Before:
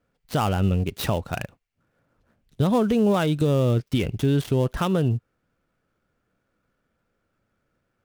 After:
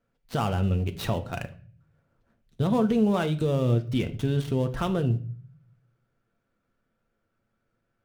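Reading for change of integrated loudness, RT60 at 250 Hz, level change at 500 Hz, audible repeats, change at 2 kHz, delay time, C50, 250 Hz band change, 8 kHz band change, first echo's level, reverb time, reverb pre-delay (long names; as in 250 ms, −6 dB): −3.0 dB, 0.75 s, −4.0 dB, no echo audible, −4.0 dB, no echo audible, 16.0 dB, −3.0 dB, can't be measured, no echo audible, 0.45 s, 4 ms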